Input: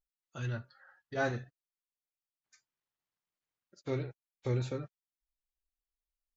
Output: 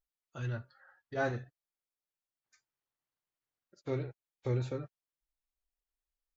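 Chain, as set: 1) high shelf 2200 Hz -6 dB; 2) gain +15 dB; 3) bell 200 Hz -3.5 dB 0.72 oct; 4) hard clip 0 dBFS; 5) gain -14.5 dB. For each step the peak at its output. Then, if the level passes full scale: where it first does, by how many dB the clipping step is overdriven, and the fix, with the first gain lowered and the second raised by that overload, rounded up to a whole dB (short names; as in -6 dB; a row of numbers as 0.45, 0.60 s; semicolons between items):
-19.0, -4.0, -4.0, -4.0, -18.5 dBFS; no overload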